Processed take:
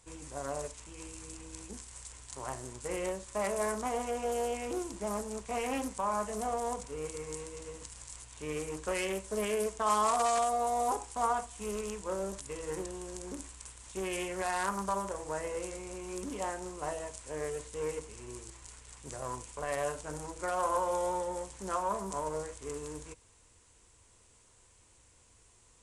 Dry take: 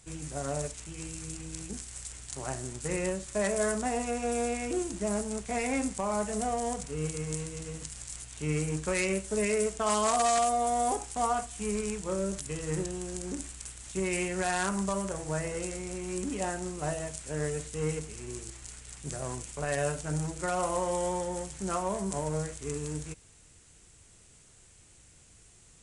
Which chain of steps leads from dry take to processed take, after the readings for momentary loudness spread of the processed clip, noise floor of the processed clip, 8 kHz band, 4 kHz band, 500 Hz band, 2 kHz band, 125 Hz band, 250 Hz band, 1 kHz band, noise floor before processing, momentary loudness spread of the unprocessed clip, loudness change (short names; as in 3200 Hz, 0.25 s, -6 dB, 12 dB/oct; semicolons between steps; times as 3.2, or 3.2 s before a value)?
15 LU, -63 dBFS, -6.0 dB, -4.0 dB, -2.5 dB, -4.5 dB, -11.5 dB, -7.0 dB, -0.5 dB, -58 dBFS, 11 LU, -3.5 dB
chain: thirty-one-band EQ 160 Hz -12 dB, 500 Hz +5 dB, 1000 Hz +11 dB; Doppler distortion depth 0.23 ms; gain -5 dB